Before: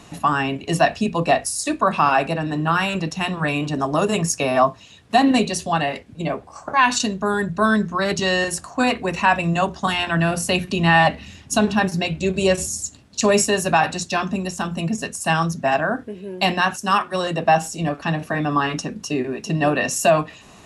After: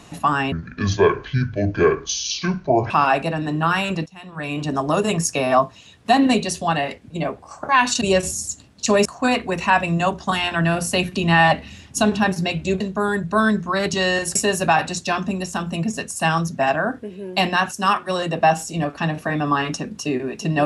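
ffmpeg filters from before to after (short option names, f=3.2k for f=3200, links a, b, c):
-filter_complex "[0:a]asplit=8[a][b][c][d][e][f][g][h];[a]atrim=end=0.524[i];[b]atrim=start=0.52:end=1.95,asetpts=PTS-STARTPTS,asetrate=26460,aresample=44100[j];[c]atrim=start=1.946:end=3.11,asetpts=PTS-STARTPTS,afade=t=out:st=1.16:d=0.004:c=hsin:silence=0.105925[k];[d]atrim=start=3.11:end=7.062,asetpts=PTS-STARTPTS,afade=t=in:d=0.58:c=qua:silence=0.105925[l];[e]atrim=start=12.358:end=13.402[m];[f]atrim=start=8.608:end=12.362[n];[g]atrim=start=7.058:end=8.612[o];[h]atrim=start=13.398[p];[i][j]acrossfade=d=0.004:c1=hsin:c2=hsin[q];[k][l]concat=n=2:v=0:a=1[r];[q][r]acrossfade=d=0.004:c1=hsin:c2=hsin[s];[s][m]acrossfade=d=0.004:c1=hsin:c2=hsin[t];[t][n]acrossfade=d=0.004:c1=hsin:c2=hsin[u];[u][o]acrossfade=d=0.004:c1=hsin:c2=hsin[v];[v][p]acrossfade=d=0.004:c1=hsin:c2=hsin"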